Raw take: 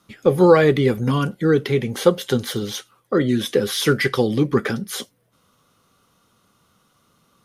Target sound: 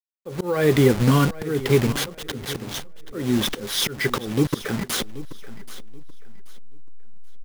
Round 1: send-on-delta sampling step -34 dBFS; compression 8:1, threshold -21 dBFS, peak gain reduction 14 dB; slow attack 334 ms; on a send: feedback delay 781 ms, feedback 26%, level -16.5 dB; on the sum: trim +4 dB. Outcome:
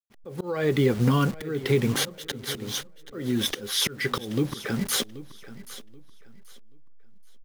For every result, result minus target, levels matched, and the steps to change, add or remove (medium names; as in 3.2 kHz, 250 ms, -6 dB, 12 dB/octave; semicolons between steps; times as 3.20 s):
send-on-delta sampling: distortion -10 dB; compression: peak gain reduction +6 dB
change: send-on-delta sampling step -25 dBFS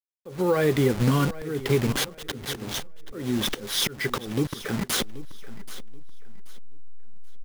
compression: peak gain reduction +6 dB
change: compression 8:1, threshold -14 dBFS, peak gain reduction 8 dB